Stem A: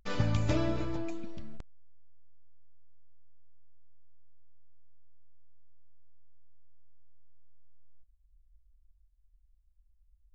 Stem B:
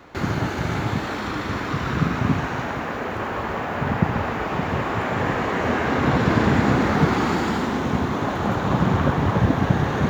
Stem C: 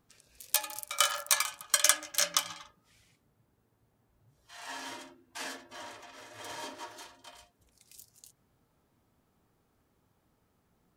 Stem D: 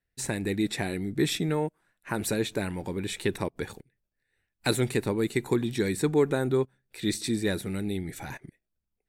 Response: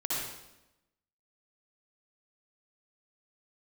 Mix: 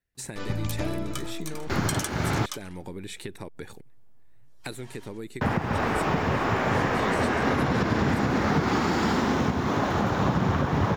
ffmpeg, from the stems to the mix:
-filter_complex "[0:a]adelay=300,volume=0.891[s0];[1:a]equalizer=f=5300:t=o:w=0.39:g=6,adelay=1550,volume=1,asplit=3[s1][s2][s3];[s1]atrim=end=2.46,asetpts=PTS-STARTPTS,afade=t=out:st=2.456:d=0.004:c=hsin[s4];[s2]atrim=start=2.46:end=5.41,asetpts=PTS-STARTPTS,volume=0[s5];[s3]atrim=start=5.41,asetpts=PTS-STARTPTS,afade=t=in:d=0.004:c=hsin[s6];[s4][s5][s6]concat=n=3:v=0:a=1[s7];[2:a]adelay=150,volume=0.944[s8];[3:a]acompressor=threshold=0.0251:ratio=12,volume=0.841,asplit=2[s9][s10];[s10]apad=whole_len=490306[s11];[s8][s11]sidechaincompress=threshold=0.00224:ratio=5:attack=41:release=131[s12];[s0][s7][s12][s9]amix=inputs=4:normalize=0,alimiter=limit=0.2:level=0:latency=1:release=260"

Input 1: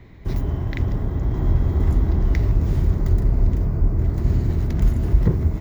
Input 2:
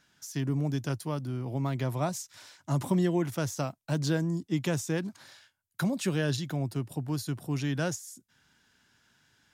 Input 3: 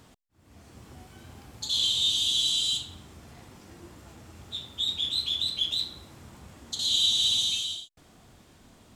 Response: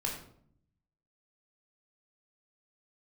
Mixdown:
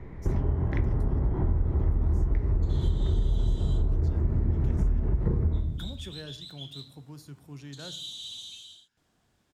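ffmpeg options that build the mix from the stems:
-filter_complex "[0:a]lowpass=1600,bandreject=f=50:t=h:w=6,bandreject=f=100:t=h:w=6,bandreject=f=150:t=h:w=6,volume=0.944,asplit=2[s0][s1];[s1]volume=0.562[s2];[1:a]volume=0.168,asplit=2[s3][s4];[s4]volume=0.224[s5];[2:a]adelay=1000,volume=0.158[s6];[3:a]atrim=start_sample=2205[s7];[s2][s5]amix=inputs=2:normalize=0[s8];[s8][s7]afir=irnorm=-1:irlink=0[s9];[s0][s3][s6][s9]amix=inputs=4:normalize=0,acompressor=threshold=0.0794:ratio=6"

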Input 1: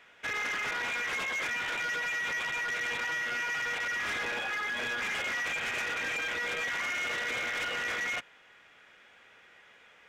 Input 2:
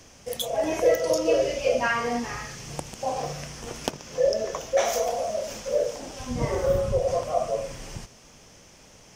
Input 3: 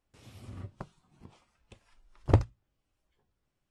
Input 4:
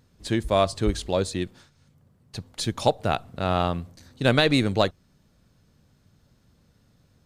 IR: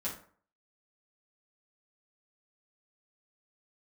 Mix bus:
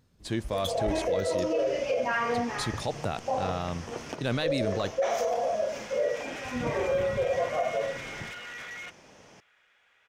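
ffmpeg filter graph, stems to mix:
-filter_complex "[0:a]equalizer=f=250:t=o:w=1.9:g=-8.5,adelay=700,volume=0.422[s0];[1:a]lowpass=f=2000:p=1,acompressor=threshold=0.0562:ratio=2,highpass=f=220:p=1,adelay=250,volume=1.26[s1];[2:a]adelay=400,volume=0.15[s2];[3:a]volume=0.562,asplit=2[s3][s4];[s4]apad=whole_len=475625[s5];[s0][s5]sidechaincompress=threshold=0.00562:ratio=8:attack=16:release=847[s6];[s6][s1][s2][s3]amix=inputs=4:normalize=0,alimiter=limit=0.106:level=0:latency=1:release=12"

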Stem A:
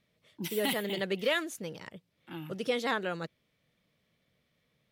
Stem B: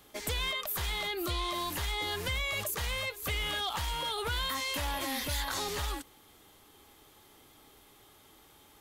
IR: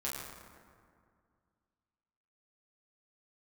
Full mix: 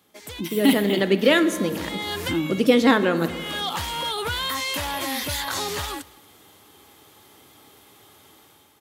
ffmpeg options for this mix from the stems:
-filter_complex "[0:a]equalizer=f=280:w=2.2:g=13,volume=0.794,asplit=3[s0][s1][s2];[s1]volume=0.282[s3];[1:a]volume=0.596,asplit=2[s4][s5];[s5]volume=0.0631[s6];[s2]apad=whole_len=388491[s7];[s4][s7]sidechaincompress=threshold=0.00631:ratio=8:attack=38:release=442[s8];[2:a]atrim=start_sample=2205[s9];[s3][s9]afir=irnorm=-1:irlink=0[s10];[s6]aecho=0:1:233:1[s11];[s0][s8][s10][s11]amix=inputs=4:normalize=0,highpass=f=79:w=0.5412,highpass=f=79:w=1.3066,dynaudnorm=f=110:g=11:m=3.76"

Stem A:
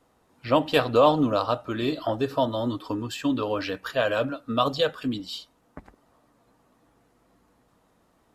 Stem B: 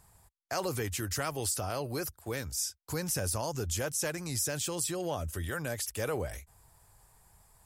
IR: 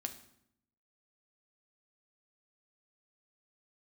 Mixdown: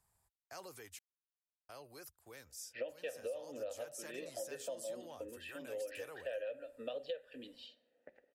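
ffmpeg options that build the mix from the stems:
-filter_complex "[0:a]asplit=3[s0][s1][s2];[s0]bandpass=f=530:t=q:w=8,volume=1[s3];[s1]bandpass=f=1840:t=q:w=8,volume=0.501[s4];[s2]bandpass=f=2480:t=q:w=8,volume=0.355[s5];[s3][s4][s5]amix=inputs=3:normalize=0,adelay=2300,volume=0.794,asplit=2[s6][s7];[s7]volume=0.447[s8];[1:a]acrossover=split=290|3000[s9][s10][s11];[s9]acompressor=threshold=0.00501:ratio=6[s12];[s12][s10][s11]amix=inputs=3:normalize=0,volume=0.168,asplit=3[s13][s14][s15];[s13]atrim=end=0.99,asetpts=PTS-STARTPTS,afade=t=out:st=0.986:d=0.004:c=hsin[s16];[s14]atrim=start=0.99:end=1.69,asetpts=PTS-STARTPTS,volume=0[s17];[s15]atrim=start=1.69,asetpts=PTS-STARTPTS,afade=t=in:d=0.004:c=hsin[s18];[s16][s17][s18]concat=n=3:v=0:a=1,asplit=2[s19][s20];[s20]apad=whole_len=469243[s21];[s6][s21]sidechaincompress=threshold=0.00141:ratio=8:attack=16:release=137[s22];[2:a]atrim=start_sample=2205[s23];[s8][s23]afir=irnorm=-1:irlink=0[s24];[s22][s19][s24]amix=inputs=3:normalize=0,lowshelf=f=440:g=-4.5,acompressor=threshold=0.0126:ratio=12"

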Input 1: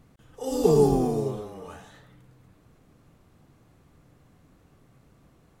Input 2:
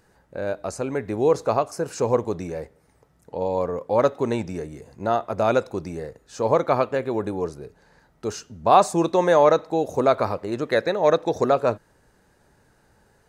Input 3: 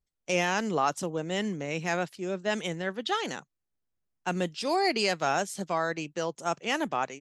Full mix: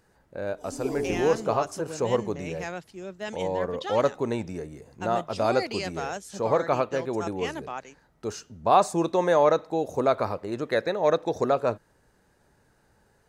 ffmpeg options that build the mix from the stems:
-filter_complex "[0:a]aecho=1:1:3:0.92,adelay=200,volume=0.2[s0];[1:a]volume=0.631[s1];[2:a]adelay=750,volume=0.501[s2];[s0][s1][s2]amix=inputs=3:normalize=0"

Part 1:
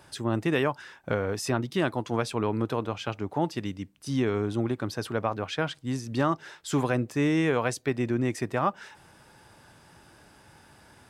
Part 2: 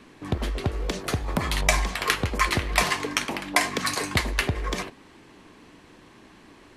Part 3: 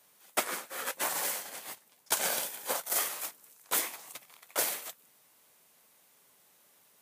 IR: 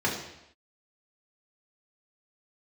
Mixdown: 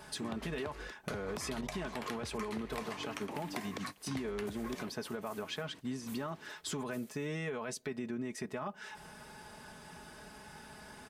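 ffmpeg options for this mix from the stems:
-filter_complex "[0:a]aecho=1:1:4.7:0.71,alimiter=limit=0.106:level=0:latency=1:release=20,volume=1.19,asplit=2[s0][s1];[1:a]highpass=77,acrossover=split=1200|7100[s2][s3][s4];[s2]acompressor=threshold=0.02:ratio=4[s5];[s3]acompressor=threshold=0.0112:ratio=4[s6];[s4]acompressor=threshold=0.00282:ratio=4[s7];[s5][s6][s7]amix=inputs=3:normalize=0,volume=1.26[s8];[2:a]adelay=2350,volume=0.15[s9];[s1]apad=whole_len=298401[s10];[s8][s10]sidechaingate=range=0.0251:threshold=0.0112:ratio=16:detection=peak[s11];[s0][s11][s9]amix=inputs=3:normalize=0,acompressor=threshold=0.01:ratio=3"

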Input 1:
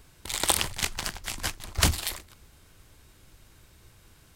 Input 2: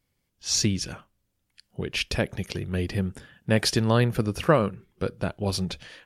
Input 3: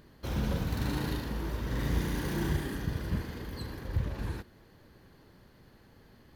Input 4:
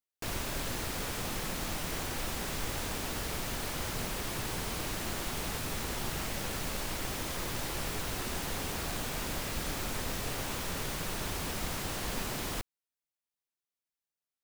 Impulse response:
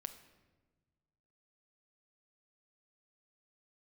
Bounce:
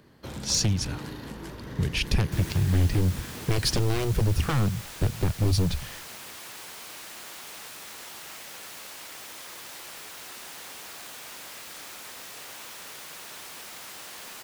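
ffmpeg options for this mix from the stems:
-filter_complex "[0:a]volume=0.112[s0];[1:a]asubboost=boost=8.5:cutoff=150,aeval=exprs='0.178*(abs(mod(val(0)/0.178+3,4)-2)-1)':c=same,volume=0.944,asplit=2[s1][s2];[2:a]acompressor=threshold=0.02:ratio=6,highpass=92,highshelf=f=9500:g=-5,volume=1.19[s3];[3:a]highpass=f=1100:p=1,adelay=2100,volume=0.531,asplit=2[s4][s5];[s5]volume=0.596[s6];[s2]apad=whole_len=192263[s7];[s0][s7]sidechaincompress=threshold=0.0708:ratio=8:attack=6.4:release=390[s8];[4:a]atrim=start_sample=2205[s9];[s6][s9]afir=irnorm=-1:irlink=0[s10];[s8][s1][s3][s4][s10]amix=inputs=5:normalize=0,acrossover=split=140|3000[s11][s12][s13];[s12]acompressor=threshold=0.0447:ratio=6[s14];[s11][s14][s13]amix=inputs=3:normalize=0"

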